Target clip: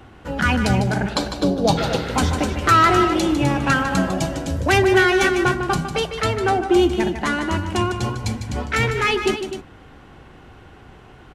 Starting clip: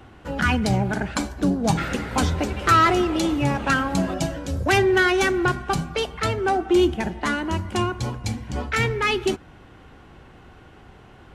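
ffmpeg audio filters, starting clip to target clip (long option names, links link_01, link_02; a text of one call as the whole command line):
ffmpeg -i in.wav -filter_complex "[0:a]asettb=1/sr,asplit=3[link_01][link_02][link_03];[link_01]atrim=end=1.094[link_04];[link_02]atrim=start=1.09:end=2.06,asetpts=PTS-STARTPTS,afade=type=in:duration=0.004:curve=qsin,afade=type=out:start_time=0.966:duration=0.004:curve=qsin,equalizer=frequency=250:width_type=o:width=1:gain=-5,equalizer=frequency=500:width_type=o:width=1:gain=8,equalizer=frequency=2000:width_type=o:width=1:gain=-7,equalizer=frequency=4000:width_type=o:width=1:gain=10,equalizer=frequency=8000:width_type=o:width=1:gain=-6[link_05];[link_03]atrim=start=2.056[link_06];[link_04][link_05]acrossfade=duration=0.004:curve1=hsin:curve2=qsin[link_07];[link_07][link_06]acrossfade=duration=0.004:curve1=qsin:curve2=hsin,aecho=1:1:151.6|253.6:0.355|0.316,volume=2dB" out.wav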